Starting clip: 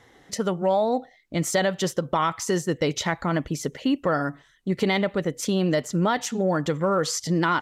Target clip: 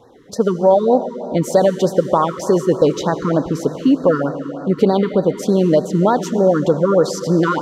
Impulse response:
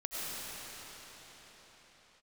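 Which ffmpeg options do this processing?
-filter_complex "[0:a]equalizer=frequency=125:width_type=o:width=1:gain=3,equalizer=frequency=250:width_type=o:width=1:gain=6,equalizer=frequency=500:width_type=o:width=1:gain=9,equalizer=frequency=1000:width_type=o:width=1:gain=6,equalizer=frequency=2000:width_type=o:width=1:gain=-5,equalizer=frequency=8000:width_type=o:width=1:gain=-4,asplit=2[link_01][link_02];[1:a]atrim=start_sample=2205,asetrate=52920,aresample=44100[link_03];[link_02][link_03]afir=irnorm=-1:irlink=0,volume=-12dB[link_04];[link_01][link_04]amix=inputs=2:normalize=0,afftfilt=real='re*(1-between(b*sr/1024,650*pow(2700/650,0.5+0.5*sin(2*PI*3.3*pts/sr))/1.41,650*pow(2700/650,0.5+0.5*sin(2*PI*3.3*pts/sr))*1.41))':imag='im*(1-between(b*sr/1024,650*pow(2700/650,0.5+0.5*sin(2*PI*3.3*pts/sr))/1.41,650*pow(2700/650,0.5+0.5*sin(2*PI*3.3*pts/sr))*1.41))':win_size=1024:overlap=0.75"

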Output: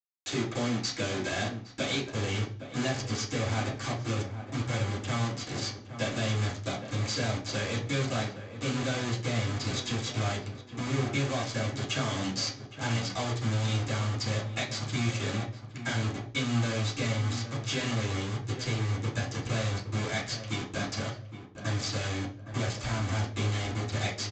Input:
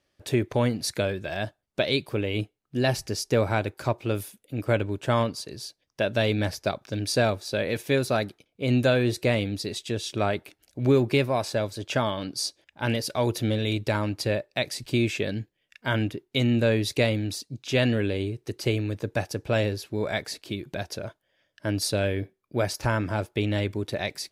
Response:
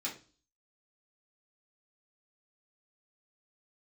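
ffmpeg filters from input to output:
-filter_complex "[0:a]asubboost=boost=6:cutoff=100,acompressor=threshold=-31dB:ratio=4,aresample=16000,acrusher=bits=5:mix=0:aa=0.000001,aresample=44100,asplit=2[link_01][link_02];[link_02]adelay=814,lowpass=frequency=1400:poles=1,volume=-10dB,asplit=2[link_03][link_04];[link_04]adelay=814,lowpass=frequency=1400:poles=1,volume=0.32,asplit=2[link_05][link_06];[link_06]adelay=814,lowpass=frequency=1400:poles=1,volume=0.32,asplit=2[link_07][link_08];[link_08]adelay=814,lowpass=frequency=1400:poles=1,volume=0.32[link_09];[link_01][link_03][link_05][link_07][link_09]amix=inputs=5:normalize=0[link_10];[1:a]atrim=start_sample=2205,asetrate=40131,aresample=44100[link_11];[link_10][link_11]afir=irnorm=-1:irlink=0"

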